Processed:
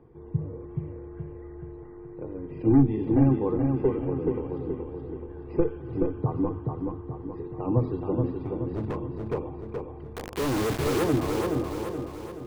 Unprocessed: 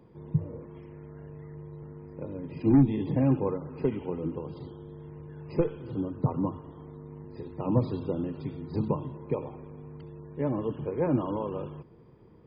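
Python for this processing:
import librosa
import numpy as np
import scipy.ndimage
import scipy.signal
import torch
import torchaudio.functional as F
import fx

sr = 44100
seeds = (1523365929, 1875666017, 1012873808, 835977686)

y = scipy.signal.sosfilt(scipy.signal.butter(2, 2000.0, 'lowpass', fs=sr, output='sos'), x)
y = fx.low_shelf(y, sr, hz=130.0, db=6.0)
y = fx.hum_notches(y, sr, base_hz=50, count=5)
y = y + 0.44 * np.pad(y, (int(2.6 * sr / 1000.0), 0))[:len(y)]
y = fx.clip_hard(y, sr, threshold_db=-27.5, at=(8.35, 9.34))
y = fx.quant_companded(y, sr, bits=2, at=(10.16, 11.04))
y = fx.echo_feedback(y, sr, ms=426, feedback_pct=48, wet_db=-4.0)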